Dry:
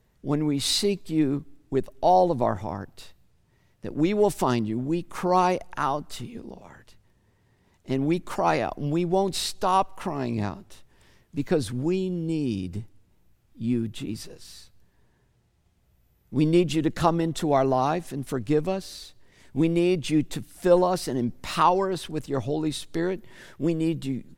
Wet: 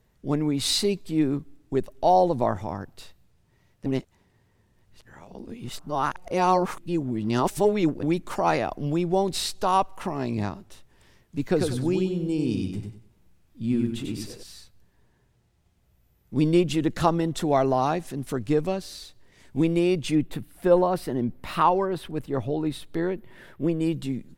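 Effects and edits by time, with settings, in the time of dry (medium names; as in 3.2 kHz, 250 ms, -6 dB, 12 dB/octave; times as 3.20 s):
3.86–8.03 s: reverse
11.46–14.43 s: feedback delay 95 ms, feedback 28%, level -4.5 dB
20.15–23.81 s: peaking EQ 6.4 kHz -12.5 dB 1.3 oct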